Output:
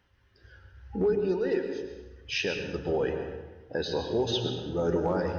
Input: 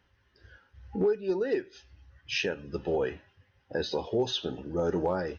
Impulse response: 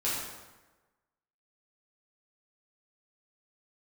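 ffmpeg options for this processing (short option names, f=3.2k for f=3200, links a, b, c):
-filter_complex "[0:a]asplit=2[a][b];[1:a]atrim=start_sample=2205,lowshelf=f=170:g=11.5,adelay=105[c];[b][c]afir=irnorm=-1:irlink=0,volume=-13.5dB[d];[a][d]amix=inputs=2:normalize=0"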